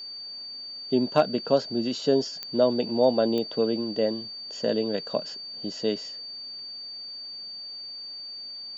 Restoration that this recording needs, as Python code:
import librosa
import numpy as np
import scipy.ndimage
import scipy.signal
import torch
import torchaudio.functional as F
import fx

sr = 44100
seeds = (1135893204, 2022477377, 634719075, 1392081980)

y = fx.fix_declip(x, sr, threshold_db=-9.0)
y = fx.fix_declick_ar(y, sr, threshold=10.0)
y = fx.notch(y, sr, hz=4600.0, q=30.0)